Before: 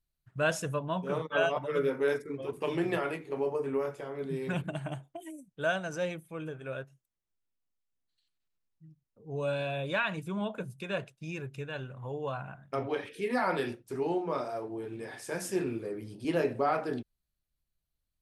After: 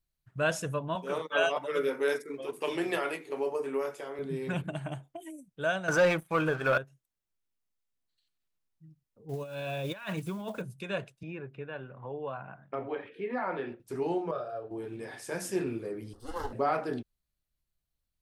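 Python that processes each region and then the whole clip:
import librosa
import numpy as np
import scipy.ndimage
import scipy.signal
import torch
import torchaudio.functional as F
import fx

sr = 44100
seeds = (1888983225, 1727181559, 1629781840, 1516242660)

y = fx.chain(x, sr, fx.highpass(hz=270.0, slope=12),
    fx.high_shelf(hz=2800.0, db=7.5), at=(0.95, 4.19))
y = fx.chain(y, sr, fx.peak_eq(hz=1200.0, db=12.5, octaves=1.9),
    fx.leveller(passes=2), at=(5.88, 6.78))
y = fx.chain(y, sr, fx.block_float(bits=5),
    fx.over_compress(threshold_db=-35.0, ratio=-0.5), at=(9.29, 10.62))
y = fx.chain(y, sr, fx.highpass(hz=270.0, slope=6),
    fx.air_absorb(metres=490.0),
    fx.band_squash(depth_pct=40), at=(11.23, 13.8))
y = fx.chain(y, sr, fx.lowpass(hz=2000.0, slope=6),
    fx.fixed_phaser(hz=1400.0, stages=8), at=(14.31, 14.71))
y = fx.chain(y, sr, fx.lower_of_two(delay_ms=1.4),
    fx.fixed_phaser(hz=630.0, stages=6), at=(16.13, 16.53))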